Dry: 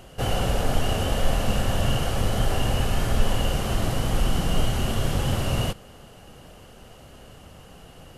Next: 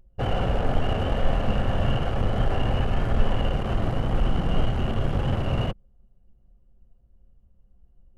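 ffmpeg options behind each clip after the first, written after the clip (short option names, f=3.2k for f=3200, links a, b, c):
-filter_complex "[0:a]anlmdn=63.1,acrossover=split=3000[a][b];[b]acompressor=threshold=-53dB:ratio=4:attack=1:release=60[c];[a][c]amix=inputs=2:normalize=0"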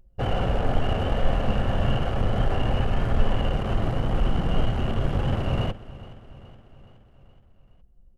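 -af "aecho=1:1:420|840|1260|1680|2100:0.126|0.073|0.0424|0.0246|0.0142"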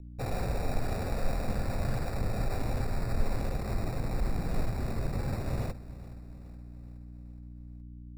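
-filter_complex "[0:a]aeval=exprs='val(0)+0.0158*(sin(2*PI*60*n/s)+sin(2*PI*2*60*n/s)/2+sin(2*PI*3*60*n/s)/3+sin(2*PI*4*60*n/s)/4+sin(2*PI*5*60*n/s)/5)':c=same,acrossover=split=410|480[a][b][c];[c]acrusher=samples=14:mix=1:aa=0.000001[d];[a][b][d]amix=inputs=3:normalize=0,volume=-8dB"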